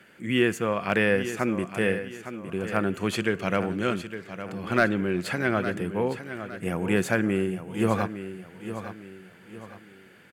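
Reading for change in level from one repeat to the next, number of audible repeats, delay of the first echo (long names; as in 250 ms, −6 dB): −8.5 dB, 3, 860 ms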